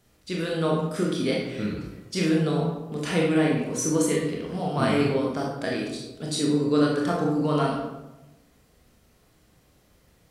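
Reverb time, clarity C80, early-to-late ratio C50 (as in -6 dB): 1.0 s, 5.0 dB, 2.0 dB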